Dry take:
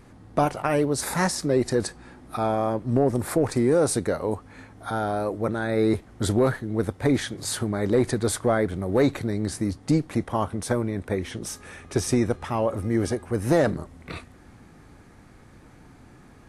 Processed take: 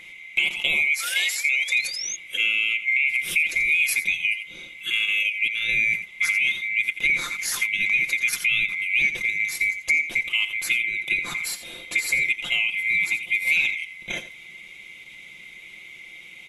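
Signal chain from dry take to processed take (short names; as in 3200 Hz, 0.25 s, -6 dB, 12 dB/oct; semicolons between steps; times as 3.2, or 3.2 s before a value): band-swap scrambler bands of 2000 Hz; on a send: echo 85 ms -12.5 dB; 1–2.16 on the sum: painted sound rise 1300–6700 Hz -35 dBFS; 0.93–1.79 HPF 460 Hz 24 dB/oct; in parallel at +1 dB: level quantiser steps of 13 dB; on the sum: comb 5.7 ms, depth 54%; compressor 2:1, threshold -23 dBFS, peak gain reduction 7.5 dB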